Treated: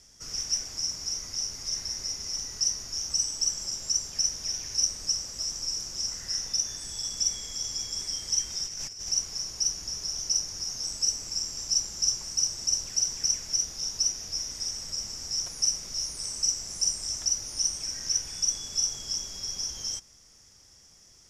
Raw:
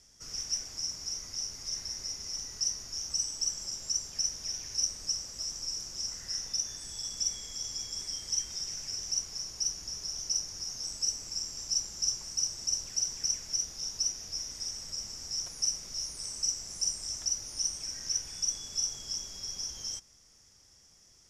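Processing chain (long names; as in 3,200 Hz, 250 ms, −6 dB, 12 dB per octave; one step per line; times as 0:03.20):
0:08.65–0:09.09: compressor whose output falls as the input rises −41 dBFS, ratio −0.5
level +4.5 dB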